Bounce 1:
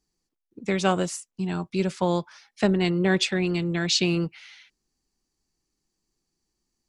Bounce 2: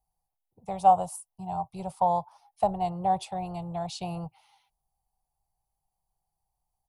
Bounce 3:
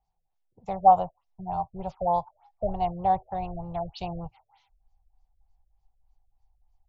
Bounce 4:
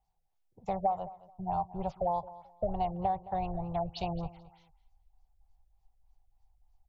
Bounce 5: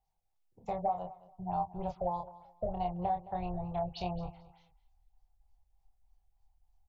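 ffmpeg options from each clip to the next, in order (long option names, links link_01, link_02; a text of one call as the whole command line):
ffmpeg -i in.wav -af "firequalizer=gain_entry='entry(120,0);entry(270,-27);entry(760,12);entry(1600,-27);entry(2900,-18);entry(6900,-17);entry(10000,2)':delay=0.05:min_phase=1" out.wav
ffmpeg -i in.wav -af "asubboost=boost=9:cutoff=61,afftfilt=real='re*lt(b*sr/1024,630*pow(7600/630,0.5+0.5*sin(2*PI*3.3*pts/sr)))':imag='im*lt(b*sr/1024,630*pow(7600/630,0.5+0.5*sin(2*PI*3.3*pts/sr)))':win_size=1024:overlap=0.75,volume=2.5dB" out.wav
ffmpeg -i in.wav -af "acompressor=threshold=-27dB:ratio=8,aecho=1:1:217|434:0.126|0.0277" out.wav
ffmpeg -i in.wav -filter_complex "[0:a]asplit=2[link_01][link_02];[link_02]adelay=28,volume=-5dB[link_03];[link_01][link_03]amix=inputs=2:normalize=0,volume=-3.5dB" out.wav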